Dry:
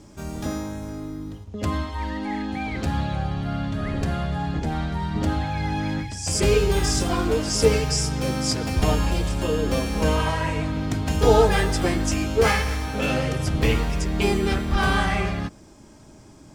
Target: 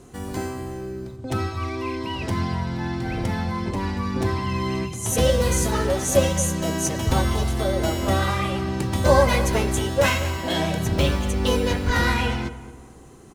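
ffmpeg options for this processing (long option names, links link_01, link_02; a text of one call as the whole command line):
ffmpeg -i in.wav -filter_complex "[0:a]asetrate=54684,aresample=44100,asplit=2[link_01][link_02];[link_02]adelay=223,lowpass=frequency=1500:poles=1,volume=-13dB,asplit=2[link_03][link_04];[link_04]adelay=223,lowpass=frequency=1500:poles=1,volume=0.42,asplit=2[link_05][link_06];[link_06]adelay=223,lowpass=frequency=1500:poles=1,volume=0.42,asplit=2[link_07][link_08];[link_08]adelay=223,lowpass=frequency=1500:poles=1,volume=0.42[link_09];[link_01][link_03][link_05][link_07][link_09]amix=inputs=5:normalize=0" out.wav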